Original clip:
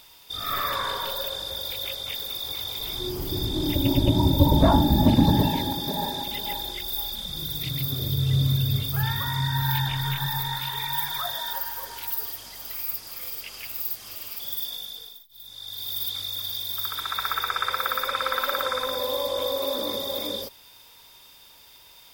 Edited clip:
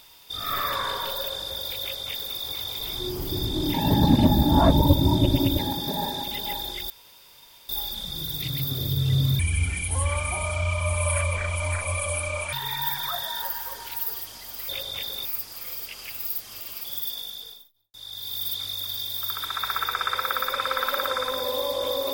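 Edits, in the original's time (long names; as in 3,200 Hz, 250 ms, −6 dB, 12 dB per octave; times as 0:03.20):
0:01.81–0:02.37: duplicate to 0:12.80
0:03.74–0:05.59: reverse
0:06.90: splice in room tone 0.79 s
0:08.60–0:10.64: play speed 65%
0:15.05–0:15.49: fade out and dull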